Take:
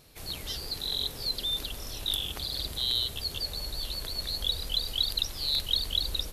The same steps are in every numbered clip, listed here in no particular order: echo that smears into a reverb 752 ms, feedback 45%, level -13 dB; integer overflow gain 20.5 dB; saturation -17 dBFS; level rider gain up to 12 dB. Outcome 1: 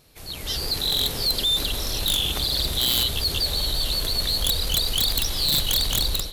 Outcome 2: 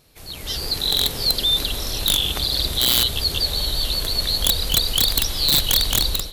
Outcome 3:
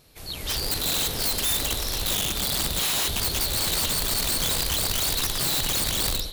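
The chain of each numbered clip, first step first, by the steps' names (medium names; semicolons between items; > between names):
echo that smears into a reverb > integer overflow > level rider > saturation; echo that smears into a reverb > integer overflow > saturation > level rider; echo that smears into a reverb > level rider > saturation > integer overflow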